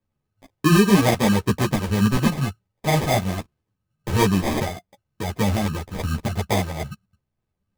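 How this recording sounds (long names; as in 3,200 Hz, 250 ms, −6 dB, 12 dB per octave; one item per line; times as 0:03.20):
phaser sweep stages 8, 0.26 Hz, lowest notch 400–1,900 Hz
aliases and images of a low sample rate 1,400 Hz, jitter 0%
a shimmering, thickened sound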